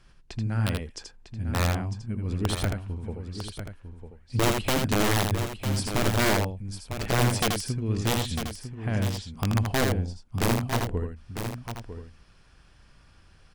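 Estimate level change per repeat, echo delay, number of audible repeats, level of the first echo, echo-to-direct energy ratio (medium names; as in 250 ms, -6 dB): no regular repeats, 81 ms, 3, -4.5 dB, -3.0 dB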